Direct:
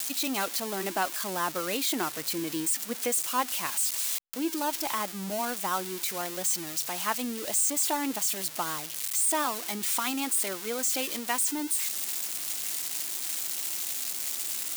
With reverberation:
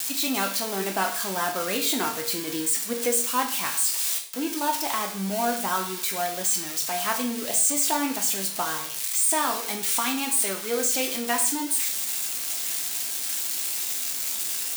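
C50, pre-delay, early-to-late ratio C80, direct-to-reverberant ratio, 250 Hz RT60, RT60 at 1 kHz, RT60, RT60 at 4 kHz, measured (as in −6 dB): 8.5 dB, 4 ms, 12.5 dB, 1.5 dB, 0.50 s, 0.50 s, 0.50 s, 0.50 s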